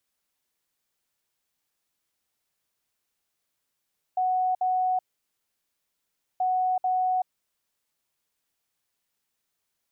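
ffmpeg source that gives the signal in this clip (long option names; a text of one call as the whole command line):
ffmpeg -f lavfi -i "aevalsrc='0.0841*sin(2*PI*740*t)*clip(min(mod(mod(t,2.23),0.44),0.38-mod(mod(t,2.23),0.44))/0.005,0,1)*lt(mod(t,2.23),0.88)':duration=4.46:sample_rate=44100" out.wav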